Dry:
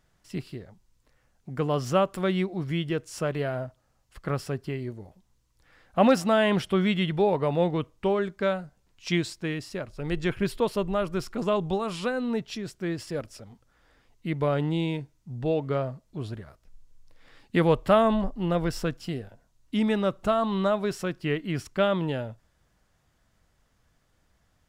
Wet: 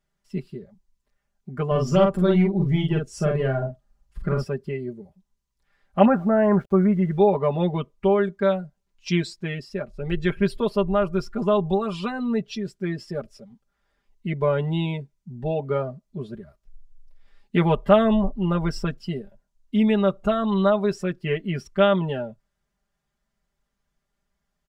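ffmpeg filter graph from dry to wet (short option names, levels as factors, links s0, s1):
-filter_complex "[0:a]asettb=1/sr,asplit=3[s0][s1][s2];[s0]atrim=end=1.714[s3];[s1]atrim=start=1.71:end=4.44,asetpts=PTS-STARTPTS,afade=t=in:d=0.004:c=qsin,afade=t=out:st=2.726:d=0.004:c=qsin,lowshelf=f=190:g=10.5,aeval=exprs='(tanh(7.08*val(0)+0.2)-tanh(0.2))/7.08':c=same,asplit=2[s4][s5];[s5]adelay=45,volume=0.708[s6];[s4][s6]amix=inputs=2:normalize=0,atrim=end_sample=120393[s7];[s2]atrim=start=4.436[s8];[s3][s7]acrossfade=d=0.004:c1=hsin:c2=qsin[s9];[s9][s8]acrossfade=d=0.004:c1=qsin:c2=hsin,asettb=1/sr,asplit=3[s10][s11][s12];[s10]atrim=end=6.054[s13];[s11]atrim=start=6.05:end=7.18,asetpts=PTS-STARTPTS,afade=t=in:d=0.004:c=qsin,afade=t=out:st=1.126:d=0.004:c=qsin,lowpass=f=1700:w=0.5412,lowpass=f=1700:w=1.3066,aeval=exprs='val(0)+0.00178*(sin(2*PI*50*n/s)+sin(2*PI*2*50*n/s)/2+sin(2*PI*3*50*n/s)/3+sin(2*PI*4*50*n/s)/4+sin(2*PI*5*50*n/s)/5)':c=same,aeval=exprs='val(0)*gte(abs(val(0)),0.00596)':c=same[s14];[s12]atrim=start=7.176[s15];[s13][s14]acrossfade=d=0.004:c1=hsin:c2=qsin[s16];[s16][s15]acrossfade=d=0.004:c1=qsin:c2=hsin,afftdn=nr=13:nf=-41,aecho=1:1:5:0.97"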